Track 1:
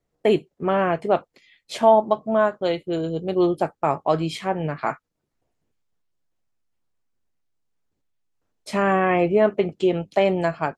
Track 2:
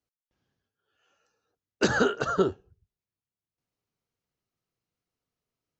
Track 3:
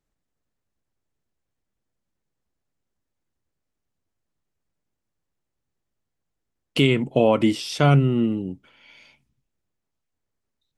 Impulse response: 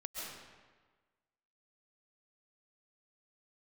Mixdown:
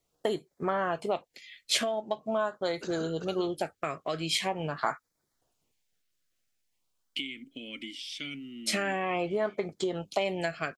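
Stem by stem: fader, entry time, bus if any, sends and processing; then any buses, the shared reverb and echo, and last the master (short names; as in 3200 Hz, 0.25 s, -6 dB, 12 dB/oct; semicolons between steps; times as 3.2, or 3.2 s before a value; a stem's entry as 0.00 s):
+1.5 dB, 0.00 s, no bus, no send, compressor 4:1, threshold -25 dBFS, peak gain reduction 13 dB; LFO notch sine 0.44 Hz 860–2900 Hz
-18.0 dB, 1.00 s, bus A, no send, tilt shelf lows +6.5 dB, about 730 Hz
-5.0 dB, 0.40 s, bus A, no send, vowel filter i; high shelf 4100 Hz +8.5 dB
bus A: 0.0 dB, high shelf 4700 Hz +8.5 dB; compressor 6:1, threshold -34 dBFS, peak gain reduction 10 dB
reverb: off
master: tilt shelf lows -7 dB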